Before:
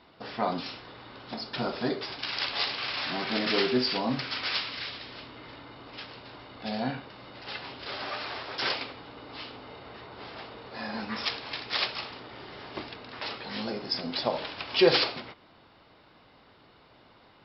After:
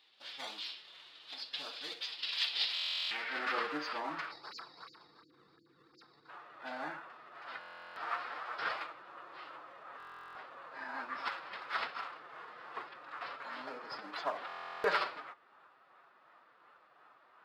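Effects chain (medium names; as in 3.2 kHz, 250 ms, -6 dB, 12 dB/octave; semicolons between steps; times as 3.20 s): spectral selection erased 4.31–6.29 s, 450–3700 Hz; in parallel at -4.5 dB: decimation with a swept rate 19×, swing 160% 2.8 Hz; on the sum: band-pass sweep 3.5 kHz -> 1.3 kHz, 2.90–3.47 s; formant-preserving pitch shift +3 st; buffer glitch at 2.74/7.59/9.98/14.47 s, samples 1024, times 15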